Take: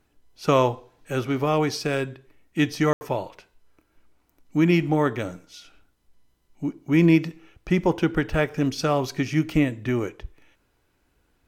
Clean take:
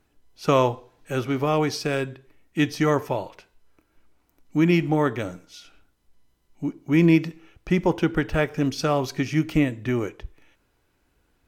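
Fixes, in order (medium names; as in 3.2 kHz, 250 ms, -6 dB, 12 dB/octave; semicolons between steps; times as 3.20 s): room tone fill 2.93–3.01 s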